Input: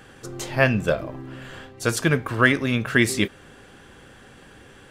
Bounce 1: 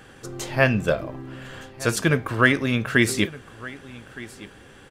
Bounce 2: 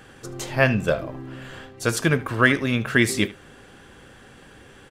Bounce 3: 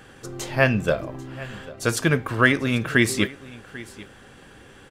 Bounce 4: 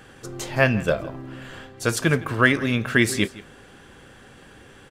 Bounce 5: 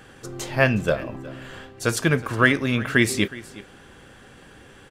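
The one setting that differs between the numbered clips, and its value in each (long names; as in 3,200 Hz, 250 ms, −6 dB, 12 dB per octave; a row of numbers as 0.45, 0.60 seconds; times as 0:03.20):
single-tap delay, delay time: 1,215, 76, 792, 164, 366 milliseconds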